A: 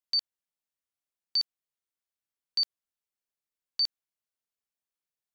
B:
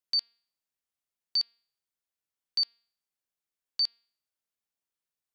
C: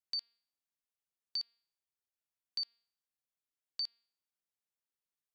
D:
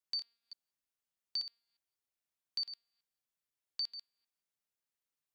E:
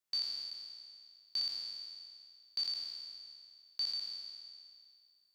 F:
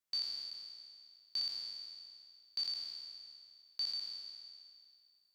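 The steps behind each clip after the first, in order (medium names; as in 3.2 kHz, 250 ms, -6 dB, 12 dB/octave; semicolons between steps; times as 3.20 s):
de-hum 232.6 Hz, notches 21
compression 2.5:1, threshold -29 dBFS, peak gain reduction 4 dB; trim -6.5 dB
chunks repeated in reverse 177 ms, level -10.5 dB
spectral sustain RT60 2.21 s
reverberation RT60 1.7 s, pre-delay 117 ms, DRR 17 dB; trim -1.5 dB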